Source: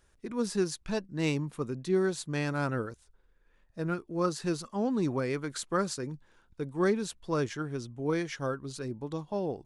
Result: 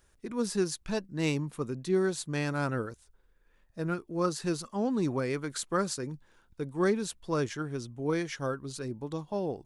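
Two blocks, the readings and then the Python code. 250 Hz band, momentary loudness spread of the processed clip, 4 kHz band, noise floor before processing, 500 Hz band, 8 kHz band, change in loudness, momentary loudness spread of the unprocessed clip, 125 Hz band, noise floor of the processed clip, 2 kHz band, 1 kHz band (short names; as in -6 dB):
0.0 dB, 9 LU, +1.0 dB, -66 dBFS, 0.0 dB, +2.0 dB, 0.0 dB, 9 LU, 0.0 dB, -66 dBFS, 0.0 dB, 0.0 dB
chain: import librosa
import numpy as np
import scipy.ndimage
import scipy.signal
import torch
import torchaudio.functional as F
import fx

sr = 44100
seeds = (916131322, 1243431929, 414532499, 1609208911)

y = fx.high_shelf(x, sr, hz=9300.0, db=6.0)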